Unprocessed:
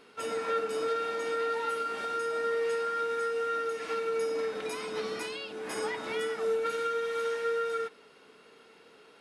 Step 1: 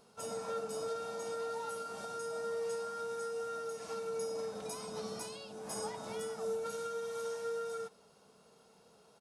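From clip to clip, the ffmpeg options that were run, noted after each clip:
ffmpeg -i in.wav -af "firequalizer=gain_entry='entry(200,0);entry(280,-15);entry(650,-3);entry(1900,-20);entry(5800,-1)':delay=0.05:min_phase=1,volume=2dB" out.wav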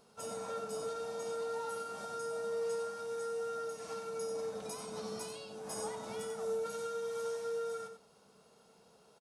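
ffmpeg -i in.wav -af "aecho=1:1:91:0.376,volume=-1dB" out.wav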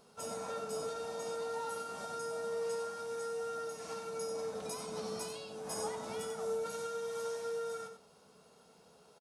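ffmpeg -i in.wav -filter_complex "[0:a]asplit=2[link_01][link_02];[link_02]adelay=12,volume=-11.5dB[link_03];[link_01][link_03]amix=inputs=2:normalize=0,volume=1.5dB" out.wav

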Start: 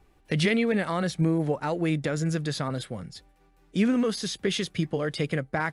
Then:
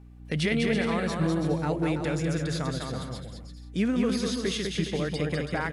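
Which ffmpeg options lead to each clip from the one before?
ffmpeg -i in.wav -filter_complex "[0:a]aeval=exprs='val(0)+0.00631*(sin(2*PI*60*n/s)+sin(2*PI*2*60*n/s)/2+sin(2*PI*3*60*n/s)/3+sin(2*PI*4*60*n/s)/4+sin(2*PI*5*60*n/s)/5)':channel_layout=same,asplit=2[link_01][link_02];[link_02]aecho=0:1:200|330|414.5|469.4|505.1:0.631|0.398|0.251|0.158|0.1[link_03];[link_01][link_03]amix=inputs=2:normalize=0,volume=-3dB" out.wav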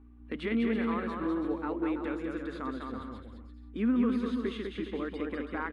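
ffmpeg -i in.wav -af "firequalizer=gain_entry='entry(100,0);entry(140,-27);entry(230,6);entry(660,-7);entry(1100,6);entry(1700,-2);entry(3800,-9);entry(5400,-25);entry(8300,-19);entry(13000,-22)':delay=0.05:min_phase=1,volume=-5dB" out.wav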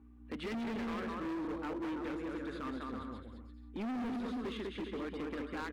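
ffmpeg -i in.wav -af "highpass=frequency=55:width=0.5412,highpass=frequency=55:width=1.3066,volume=34dB,asoftclip=hard,volume=-34dB,volume=-2dB" out.wav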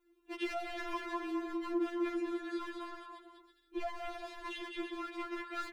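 ffmpeg -i in.wav -af "adynamicequalizer=threshold=0.00251:dfrequency=240:dqfactor=0.93:tfrequency=240:tqfactor=0.93:attack=5:release=100:ratio=0.375:range=3:mode=cutabove:tftype=bell,afftfilt=real='re*4*eq(mod(b,16),0)':imag='im*4*eq(mod(b,16),0)':win_size=2048:overlap=0.75,volume=5.5dB" out.wav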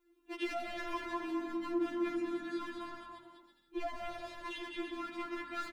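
ffmpeg -i in.wav -filter_complex "[0:a]asplit=6[link_01][link_02][link_03][link_04][link_05][link_06];[link_02]adelay=83,afreqshift=-43,volume=-18.5dB[link_07];[link_03]adelay=166,afreqshift=-86,volume=-23.9dB[link_08];[link_04]adelay=249,afreqshift=-129,volume=-29.2dB[link_09];[link_05]adelay=332,afreqshift=-172,volume=-34.6dB[link_10];[link_06]adelay=415,afreqshift=-215,volume=-39.9dB[link_11];[link_01][link_07][link_08][link_09][link_10][link_11]amix=inputs=6:normalize=0" out.wav

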